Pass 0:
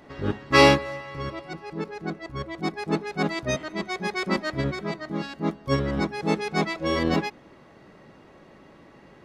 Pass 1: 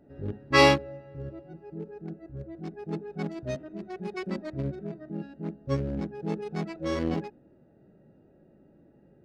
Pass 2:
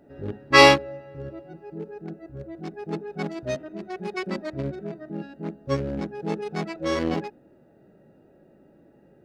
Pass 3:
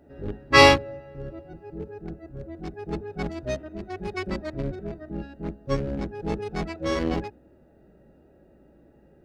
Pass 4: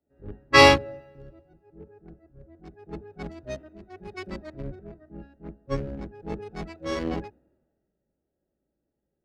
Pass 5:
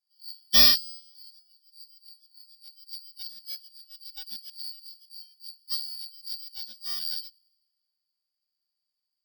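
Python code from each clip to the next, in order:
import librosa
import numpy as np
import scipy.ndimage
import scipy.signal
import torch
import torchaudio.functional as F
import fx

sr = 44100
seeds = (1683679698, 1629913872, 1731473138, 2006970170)

y1 = fx.wiener(x, sr, points=41)
y1 = fx.hpss(y1, sr, part='percussive', gain_db=-10)
y1 = y1 * librosa.db_to_amplitude(-2.0)
y2 = fx.low_shelf(y1, sr, hz=290.0, db=-8.5)
y2 = y2 * librosa.db_to_amplitude(7.0)
y3 = fx.octave_divider(y2, sr, octaves=2, level_db=-3.0)
y3 = y3 * librosa.db_to_amplitude(-1.0)
y4 = fx.band_widen(y3, sr, depth_pct=70)
y4 = y4 * librosa.db_to_amplitude(-6.5)
y5 = fx.band_shuffle(y4, sr, order='4321')
y5 = (np.kron(y5[::2], np.eye(2)[0]) * 2)[:len(y5)]
y5 = y5 * librosa.db_to_amplitude(-6.0)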